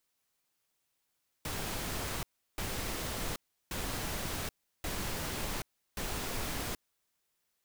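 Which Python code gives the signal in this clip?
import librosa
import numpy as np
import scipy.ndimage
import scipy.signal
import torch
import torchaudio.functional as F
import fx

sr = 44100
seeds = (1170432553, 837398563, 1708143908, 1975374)

y = fx.noise_burst(sr, seeds[0], colour='pink', on_s=0.78, off_s=0.35, bursts=5, level_db=-36.5)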